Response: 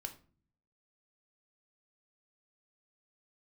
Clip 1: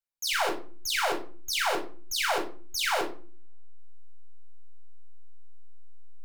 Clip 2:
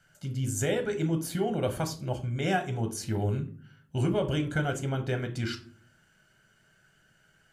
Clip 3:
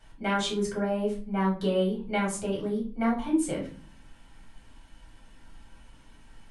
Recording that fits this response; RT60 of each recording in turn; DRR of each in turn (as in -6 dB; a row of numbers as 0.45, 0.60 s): 2; 0.40, 0.45, 0.40 s; 1.0, 6.0, -4.0 dB